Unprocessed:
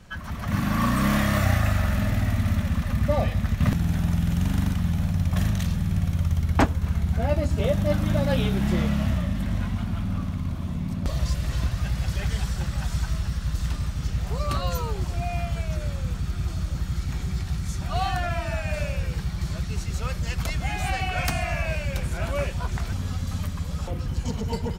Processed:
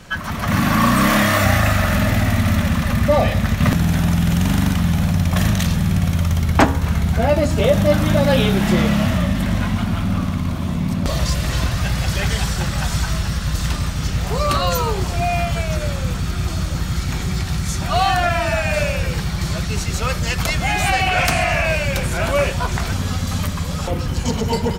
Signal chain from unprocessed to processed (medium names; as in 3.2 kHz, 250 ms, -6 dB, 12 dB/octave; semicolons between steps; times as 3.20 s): bass shelf 140 Hz -9 dB; de-hum 67.94 Hz, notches 28; in parallel at 0 dB: peak limiter -21.5 dBFS, peak gain reduction 11 dB; 21.07–21.65 s: on the sum: loudspeaker Doppler distortion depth 0.18 ms; trim +6.5 dB